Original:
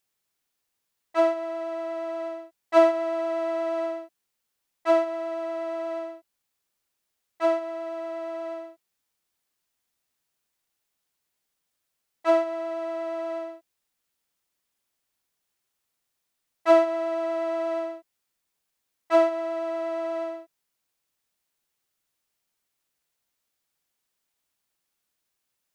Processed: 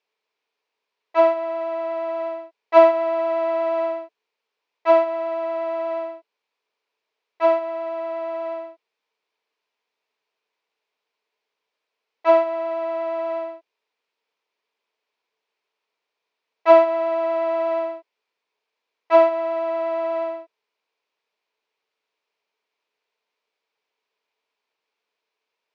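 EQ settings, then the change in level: cabinet simulation 310–4900 Hz, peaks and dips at 620 Hz +4 dB, 970 Hz +8 dB, 2.4 kHz +7 dB; peaking EQ 440 Hz +14 dB 0.24 oct; +1.0 dB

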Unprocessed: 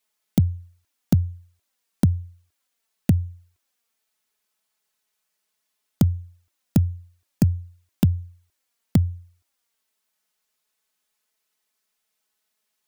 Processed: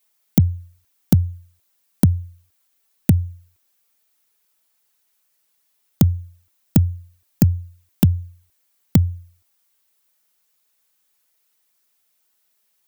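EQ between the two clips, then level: treble shelf 12 kHz +11.5 dB; +3.5 dB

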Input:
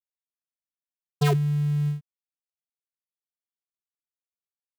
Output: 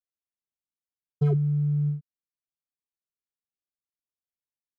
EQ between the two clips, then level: boxcar filter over 49 samples; 0.0 dB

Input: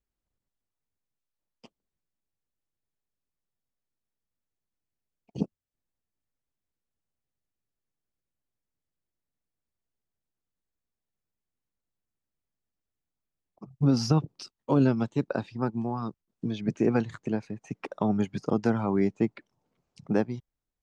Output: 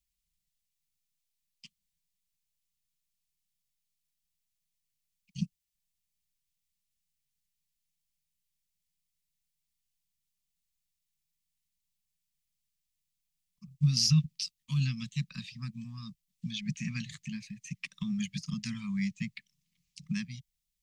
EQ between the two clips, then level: inverse Chebyshev band-stop 300–850 Hz, stop band 50 dB; bass shelf 82 Hz -8 dB; static phaser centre 390 Hz, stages 6; +9.0 dB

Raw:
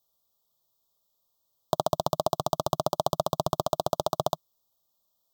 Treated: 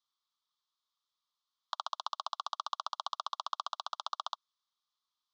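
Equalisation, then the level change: steep high-pass 1.1 kHz 36 dB/octave; low-pass 6.5 kHz 12 dB/octave; distance through air 160 m; +1.5 dB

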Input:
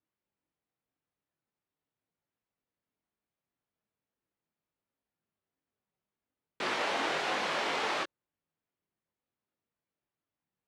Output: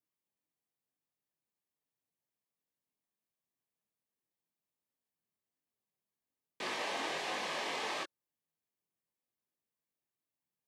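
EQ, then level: high-pass 84 Hz; Butterworth band-stop 1.4 kHz, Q 7.2; treble shelf 6.4 kHz +8.5 dB; -6.0 dB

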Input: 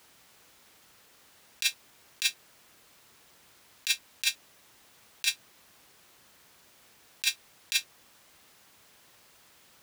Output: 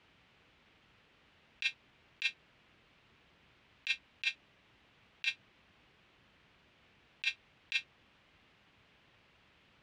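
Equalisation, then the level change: resonant low-pass 2.8 kHz, resonance Q 1.8; bass shelf 290 Hz +11.5 dB; -8.0 dB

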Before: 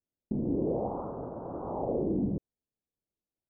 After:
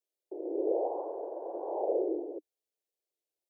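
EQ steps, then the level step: steep high-pass 310 Hz 96 dB/octave; static phaser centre 530 Hz, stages 4; +3.0 dB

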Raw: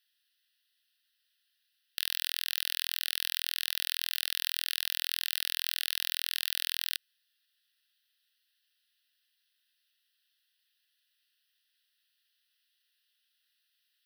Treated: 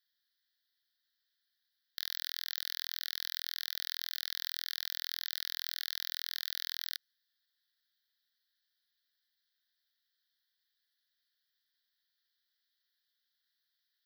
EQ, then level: dynamic bell 6.9 kHz, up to +4 dB, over -54 dBFS, Q 2.2; static phaser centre 2.7 kHz, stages 6; -3.5 dB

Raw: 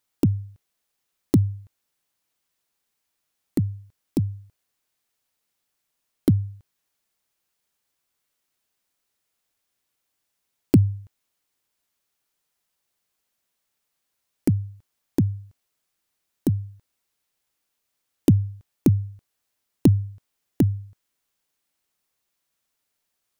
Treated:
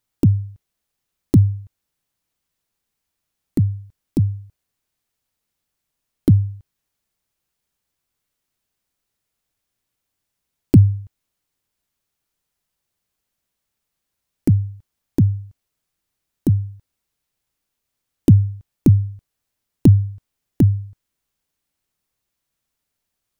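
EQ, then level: bass shelf 200 Hz +11.5 dB; -1.5 dB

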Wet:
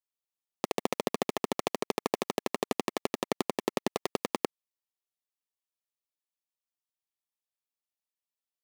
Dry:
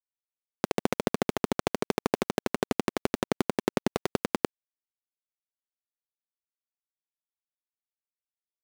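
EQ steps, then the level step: high-pass 400 Hz 6 dB/octave; Butterworth band-stop 1.5 kHz, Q 4.1; band-stop 2.1 kHz, Q 13; 0.0 dB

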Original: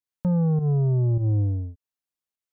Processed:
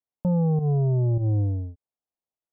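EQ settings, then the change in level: resonant low-pass 770 Hz, resonance Q 1.8; -1.0 dB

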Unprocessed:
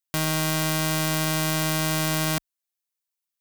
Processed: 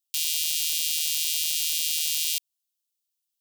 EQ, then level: steep high-pass 2.7 kHz 48 dB/octave; +3.5 dB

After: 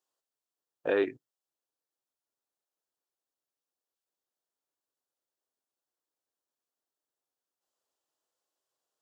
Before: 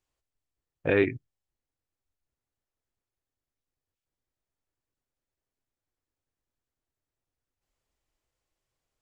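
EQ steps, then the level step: high-pass 410 Hz 12 dB/octave; peaking EQ 2.2 kHz -13.5 dB 0.49 oct; 0.0 dB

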